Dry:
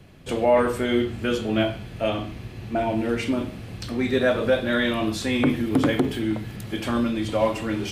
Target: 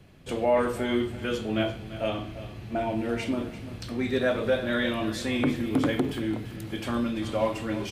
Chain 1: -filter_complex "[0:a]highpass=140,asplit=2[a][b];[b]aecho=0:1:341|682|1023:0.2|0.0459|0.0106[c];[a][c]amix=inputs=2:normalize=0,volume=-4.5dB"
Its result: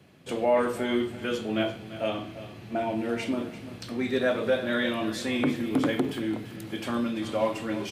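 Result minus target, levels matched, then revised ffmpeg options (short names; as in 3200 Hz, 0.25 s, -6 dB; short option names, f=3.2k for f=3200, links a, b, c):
125 Hz band -4.0 dB
-filter_complex "[0:a]asplit=2[a][b];[b]aecho=0:1:341|682|1023:0.2|0.0459|0.0106[c];[a][c]amix=inputs=2:normalize=0,volume=-4.5dB"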